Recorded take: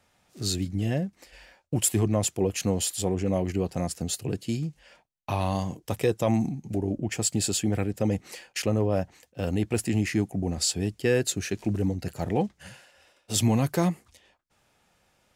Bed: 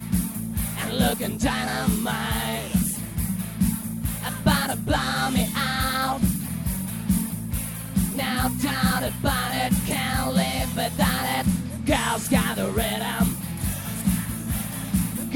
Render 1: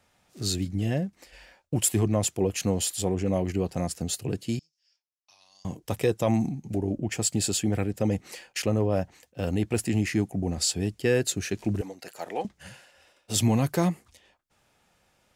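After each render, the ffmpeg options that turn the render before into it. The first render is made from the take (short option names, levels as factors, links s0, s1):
-filter_complex "[0:a]asettb=1/sr,asplit=3[s0][s1][s2];[s0]atrim=end=4.594[s3];[s1]atrim=start=4.59:end=5.65,asetpts=PTS-STARTPTS,afade=t=in:d=0.004:c=qsin,afade=t=out:st=1.056:d=0.004:c=qsin,bandpass=f=5300:t=q:w=9.1[s4];[s2]atrim=start=5.646[s5];[s3][s4]acrossfade=d=0.004:c1=hsin:c2=qsin[s6];[s6][s5]acrossfade=d=0.004:c1=qsin:c2=hsin,asettb=1/sr,asplit=3[s7][s8][s9];[s7]atrim=end=11.814[s10];[s8]atrim=start=11.81:end=12.45,asetpts=PTS-STARTPTS,afade=t=in:d=0.004:c=qsin,afade=t=out:st=0.636:d=0.004:c=qsin,highpass=560[s11];[s9]atrim=start=12.446[s12];[s10][s11]acrossfade=d=0.004:c1=hsin:c2=qsin[s13];[s13][s12]acrossfade=d=0.004:c1=qsin:c2=hsin"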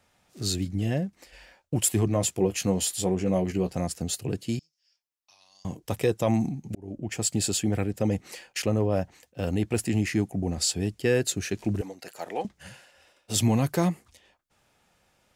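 -filter_complex "[0:a]asettb=1/sr,asplit=3[s0][s1][s2];[s0]atrim=end=2.064[s3];[s1]atrim=start=2.06:end=3.77,asetpts=PTS-STARTPTS,afade=t=in:d=0.004:c=qsin,afade=t=out:st=1.706:d=0.004:c=qsin,asplit=2[s4][s5];[s5]adelay=16,volume=0.398[s6];[s4][s6]amix=inputs=2:normalize=0,atrim=end_sample=75411[s7];[s2]atrim=start=3.766[s8];[s3][s7]acrossfade=d=0.004:c1=hsin:c2=qsin[s9];[s9][s8]acrossfade=d=0.004:c1=qsin:c2=hsin,asplit=2[s10][s11];[s10]atrim=end=6.75,asetpts=PTS-STARTPTS,afade=t=out:st=6.746:d=0.004:c=hsin[s12];[s11]atrim=start=6.75,asetpts=PTS-STARTPTS,afade=t=in:d=0.66:c=qsin[s13];[s12][s13]concat=n=2:v=0:a=1"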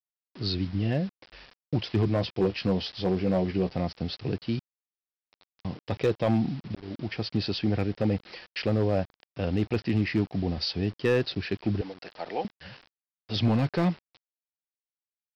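-af "aresample=11025,acrusher=bits=7:mix=0:aa=0.000001,aresample=44100,asoftclip=type=hard:threshold=0.141"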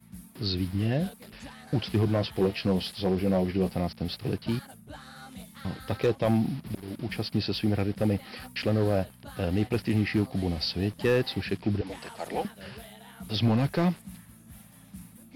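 -filter_complex "[1:a]volume=0.0794[s0];[0:a][s0]amix=inputs=2:normalize=0"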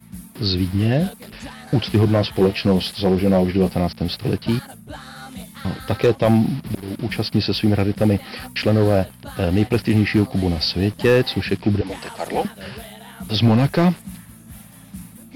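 -af "volume=2.82"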